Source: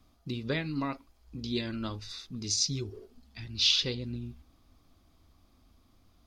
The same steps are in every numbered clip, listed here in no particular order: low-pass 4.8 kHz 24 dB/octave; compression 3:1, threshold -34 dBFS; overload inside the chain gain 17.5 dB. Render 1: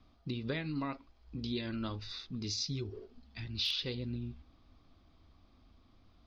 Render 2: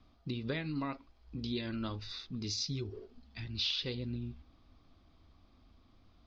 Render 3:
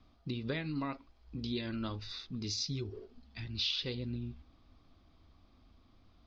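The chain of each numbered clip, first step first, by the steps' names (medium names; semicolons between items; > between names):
low-pass > overload inside the chain > compression; overload inside the chain > low-pass > compression; low-pass > compression > overload inside the chain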